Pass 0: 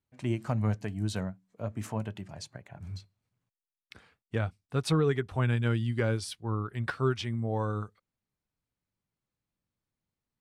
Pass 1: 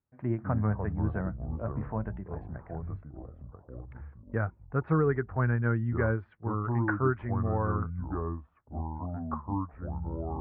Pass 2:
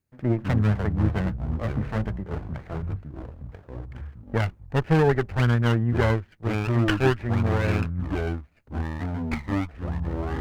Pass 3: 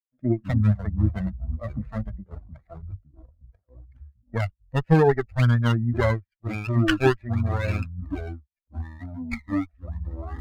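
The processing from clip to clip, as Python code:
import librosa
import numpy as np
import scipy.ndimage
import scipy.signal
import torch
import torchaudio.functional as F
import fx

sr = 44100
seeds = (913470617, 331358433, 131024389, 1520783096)

y1 = fx.dynamic_eq(x, sr, hz=1400.0, q=1.6, threshold_db=-47.0, ratio=4.0, max_db=4)
y1 = scipy.signal.sosfilt(scipy.signal.butter(6, 1800.0, 'lowpass', fs=sr, output='sos'), y1)
y1 = fx.echo_pitch(y1, sr, ms=130, semitones=-5, count=3, db_per_echo=-6.0)
y2 = fx.lower_of_two(y1, sr, delay_ms=0.45)
y2 = y2 * librosa.db_to_amplitude(7.5)
y3 = fx.bin_expand(y2, sr, power=2.0)
y3 = y3 * librosa.db_to_amplitude(4.5)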